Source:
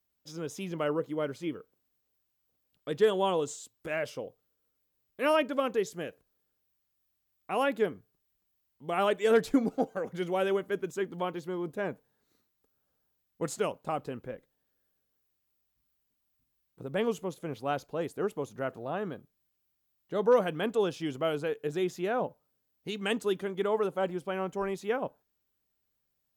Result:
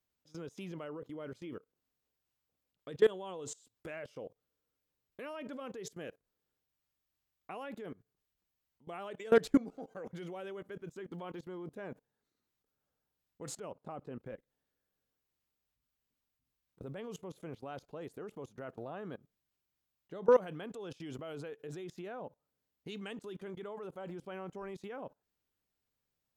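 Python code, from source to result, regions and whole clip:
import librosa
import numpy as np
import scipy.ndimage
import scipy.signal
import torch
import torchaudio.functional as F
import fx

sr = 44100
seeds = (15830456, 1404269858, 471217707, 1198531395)

y = fx.chain(x, sr, fx.highpass(hz=51.0, slope=12),
    fx.high_shelf(hz=2200.0, db=-10.5), at=(13.6, 14.2))
y = fx.high_shelf(y, sr, hz=11000.0, db=-8.5)
y = fx.level_steps(y, sr, step_db=22)
y = y * librosa.db_to_amplitude(1.0)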